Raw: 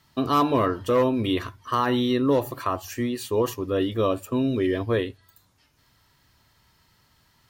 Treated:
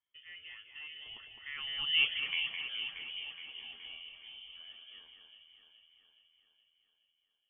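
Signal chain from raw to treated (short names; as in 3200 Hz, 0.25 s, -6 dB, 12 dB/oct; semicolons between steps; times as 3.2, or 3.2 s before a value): Doppler pass-by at 2.09, 52 m/s, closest 5.6 m; inverted band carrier 3300 Hz; echo with dull and thin repeats by turns 0.21 s, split 2500 Hz, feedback 76%, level -4.5 dB; gain -4.5 dB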